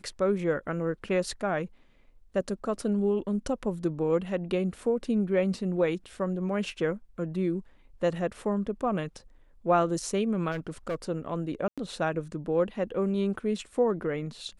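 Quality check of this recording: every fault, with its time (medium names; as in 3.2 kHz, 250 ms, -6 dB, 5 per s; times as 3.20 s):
10.51–10.95 s: clipped -27.5 dBFS
11.68–11.78 s: dropout 96 ms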